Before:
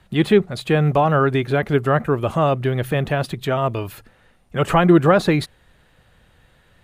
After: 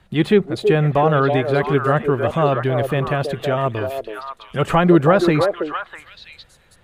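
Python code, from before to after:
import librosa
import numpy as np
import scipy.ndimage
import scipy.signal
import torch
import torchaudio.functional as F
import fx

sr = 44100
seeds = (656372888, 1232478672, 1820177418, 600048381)

y = fx.high_shelf(x, sr, hz=8200.0, db=-5.5)
y = fx.echo_stepped(y, sr, ms=325, hz=500.0, octaves=1.4, feedback_pct=70, wet_db=-2)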